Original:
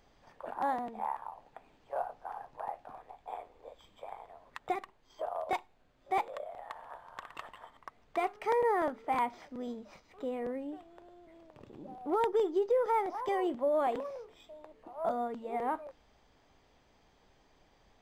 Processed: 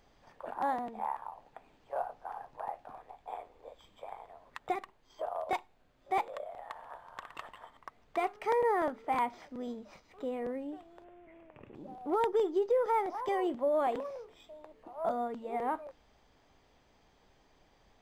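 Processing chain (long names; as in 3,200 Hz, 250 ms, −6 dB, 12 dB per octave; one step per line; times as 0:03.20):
0:11.04–0:11.75: high shelf with overshoot 3,300 Hz −10 dB, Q 3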